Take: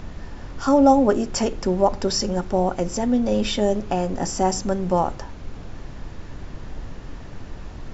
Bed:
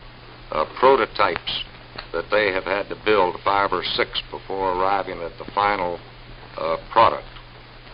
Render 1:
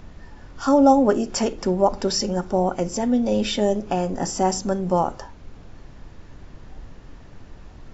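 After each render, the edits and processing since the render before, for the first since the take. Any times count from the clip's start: noise print and reduce 7 dB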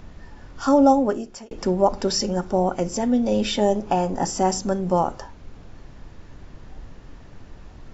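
0.81–1.51 s: fade out; 3.56–4.25 s: peaking EQ 880 Hz +7 dB 0.48 oct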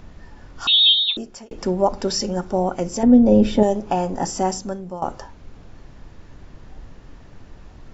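0.67–1.17 s: frequency inversion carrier 4 kHz; 3.03–3.63 s: tilt shelf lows +9.5 dB, about 1.2 kHz; 4.39–5.02 s: fade out, to -16 dB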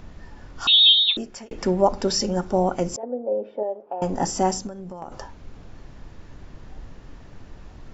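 0.94–1.81 s: peaking EQ 2 kHz +5 dB 0.86 oct; 2.96–4.02 s: ladder band-pass 630 Hz, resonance 45%; 4.67–5.12 s: compression, threshold -32 dBFS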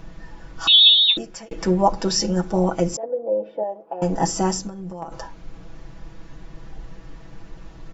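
comb 6.1 ms, depth 84%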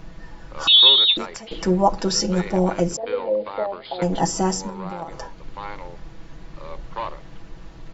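add bed -15 dB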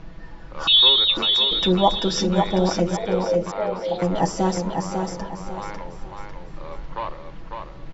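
distance through air 95 m; feedback delay 549 ms, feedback 34%, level -5 dB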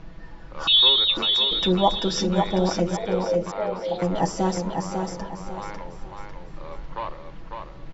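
trim -2 dB

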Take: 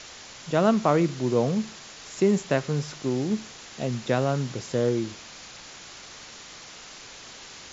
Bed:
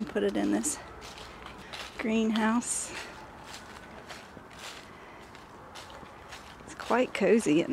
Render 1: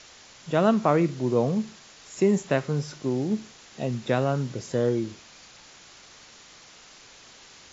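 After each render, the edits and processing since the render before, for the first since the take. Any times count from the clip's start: noise print and reduce 6 dB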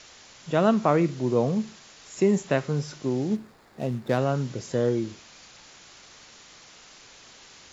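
3.35–4.18 s: median filter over 15 samples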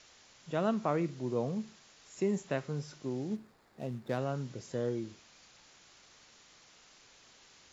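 trim -10 dB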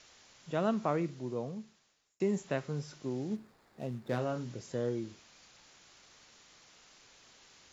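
0.87–2.20 s: fade out; 4.08–4.56 s: doubling 25 ms -7 dB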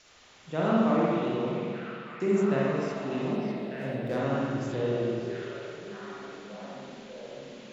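repeats whose band climbs or falls 599 ms, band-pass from 3.3 kHz, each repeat -0.7 oct, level -1 dB; spring tank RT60 2.2 s, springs 44/57 ms, chirp 20 ms, DRR -6.5 dB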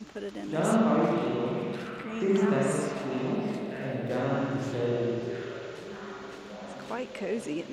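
add bed -9 dB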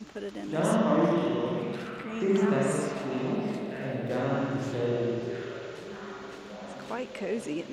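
0.63–1.60 s: rippled EQ curve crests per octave 1.2, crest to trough 8 dB

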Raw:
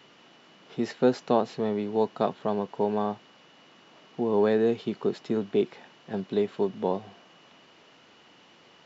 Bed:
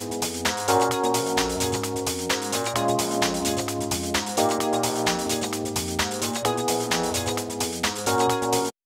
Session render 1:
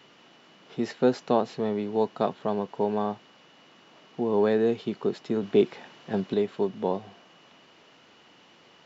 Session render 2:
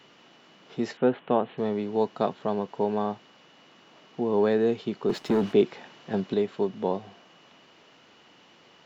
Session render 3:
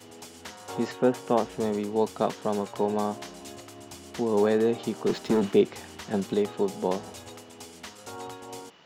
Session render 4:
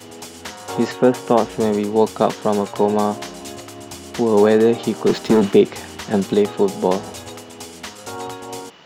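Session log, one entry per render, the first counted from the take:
5.43–6.34 s: gain +4 dB
0.97–1.58 s: elliptic low-pass 3.3 kHz; 5.09–5.53 s: waveshaping leveller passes 2
add bed -18 dB
trim +9.5 dB; peak limiter -2 dBFS, peak gain reduction 2 dB

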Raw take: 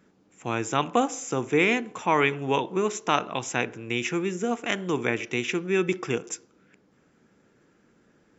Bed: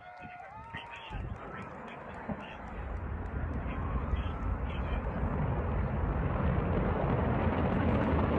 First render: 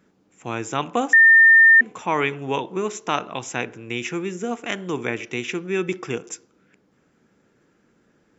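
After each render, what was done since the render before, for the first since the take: 1.13–1.81 s: bleep 1.81 kHz -8 dBFS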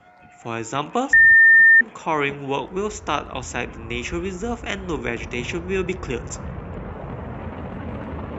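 add bed -2.5 dB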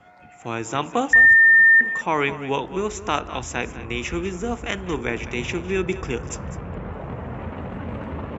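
delay 202 ms -14.5 dB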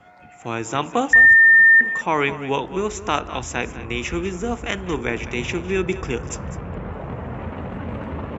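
trim +1.5 dB

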